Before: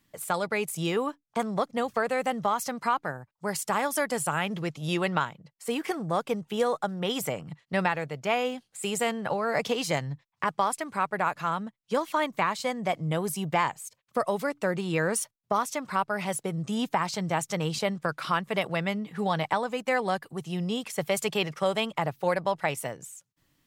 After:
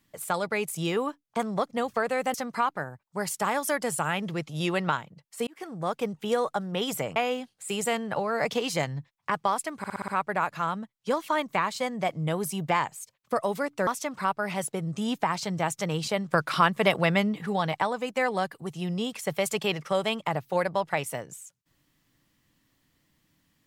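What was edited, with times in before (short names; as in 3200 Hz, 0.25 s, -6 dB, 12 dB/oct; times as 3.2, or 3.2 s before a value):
2.34–2.62 cut
5.75–6.45 fade in equal-power
7.44–8.3 cut
10.92 stutter 0.06 s, 6 plays
14.71–15.58 cut
17.99–19.17 gain +5.5 dB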